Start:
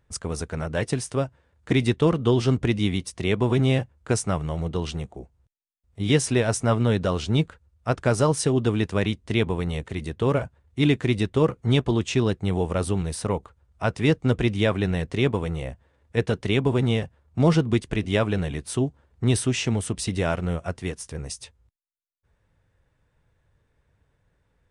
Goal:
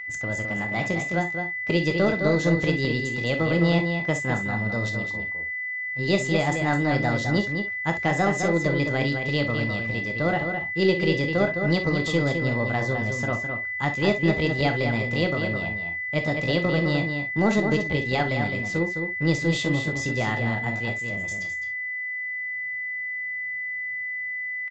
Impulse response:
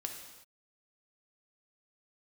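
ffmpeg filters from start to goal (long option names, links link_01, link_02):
-filter_complex "[0:a]asetrate=57191,aresample=44100,atempo=0.771105,aeval=exprs='val(0)+0.0316*sin(2*PI*2000*n/s)':channel_layout=same,asplit=2[link_01][link_02];[link_02]aeval=exprs='clip(val(0),-1,0.0596)':channel_layout=same,volume=-12dB[link_03];[link_01][link_03]amix=inputs=2:normalize=0,asplit=2[link_04][link_05];[link_05]adelay=209.9,volume=-6dB,highshelf=frequency=4000:gain=-4.72[link_06];[link_04][link_06]amix=inputs=2:normalize=0[link_07];[1:a]atrim=start_sample=2205,atrim=end_sample=3087[link_08];[link_07][link_08]afir=irnorm=-1:irlink=0,aresample=16000,aresample=44100,volume=-2.5dB"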